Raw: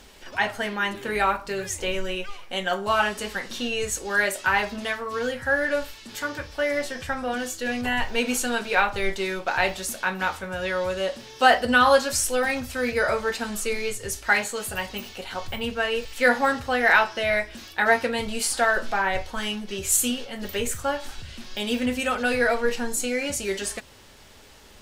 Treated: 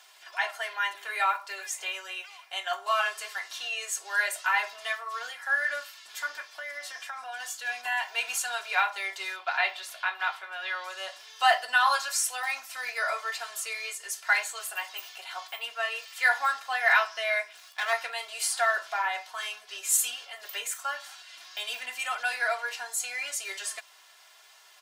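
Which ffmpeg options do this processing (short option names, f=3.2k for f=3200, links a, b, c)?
-filter_complex "[0:a]asettb=1/sr,asplit=3[a][b][c];[a]atrim=end=6.424[d];[b]atrim=start=6.42:end=7.4,asetpts=PTS-STARTPTS,afade=t=in:d=0.004:c=qsin,afade=t=out:st=0.976:d=0.004:c=qsin,acompressor=threshold=-27dB:ratio=6:attack=3.2:release=140:knee=1:detection=peak[e];[c]atrim=start=7.396[f];[d][e]acrossfade=d=0.004:c1=hsin:c2=qsin[g];[g][f]acrossfade=d=0.004:c1=qsin:c2=hsin,asettb=1/sr,asplit=3[h][i][j];[h]atrim=end=9.364[k];[i]atrim=start=9.36:end=10.84,asetpts=PTS-STARTPTS,afade=t=in:d=0.004:c=qsin,afade=t=out:st=1.476:d=0.004:c=qsin,highshelf=f=4.9k:t=q:w=1.5:g=-8.5[l];[j]atrim=start=10.836[m];[k][l]acrossfade=d=0.004:c1=hsin:c2=qsin[n];[n][m]acrossfade=d=0.004:c1=qsin:c2=hsin,asettb=1/sr,asplit=3[o][p][q];[o]atrim=end=17.524[r];[p]atrim=start=17.52:end=17.93,asetpts=PTS-STARTPTS,afade=t=in:d=0.004:c=qsin,afade=t=out:st=0.406:d=0.004:c=qsin,aeval=exprs='max(val(0),0)':c=same[s];[q]atrim=start=17.926[t];[r][s]acrossfade=d=0.004:c1=hsin:c2=qsin[u];[u][t]acrossfade=d=0.004:c1=qsin:c2=hsin,highpass=f=740:w=0.5412,highpass=f=740:w=1.3066,aecho=1:1:2.9:0.74,volume=-5dB"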